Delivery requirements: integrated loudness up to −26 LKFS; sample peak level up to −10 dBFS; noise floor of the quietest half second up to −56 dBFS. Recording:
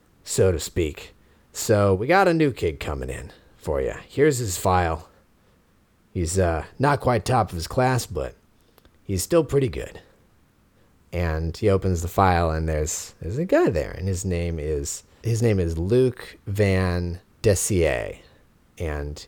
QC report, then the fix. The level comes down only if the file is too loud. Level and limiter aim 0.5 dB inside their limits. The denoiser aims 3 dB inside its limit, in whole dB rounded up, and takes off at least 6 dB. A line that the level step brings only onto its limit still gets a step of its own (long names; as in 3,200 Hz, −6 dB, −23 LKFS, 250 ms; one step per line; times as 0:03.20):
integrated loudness −23.0 LKFS: out of spec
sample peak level −5.0 dBFS: out of spec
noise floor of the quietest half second −60 dBFS: in spec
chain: level −3.5 dB
brickwall limiter −10.5 dBFS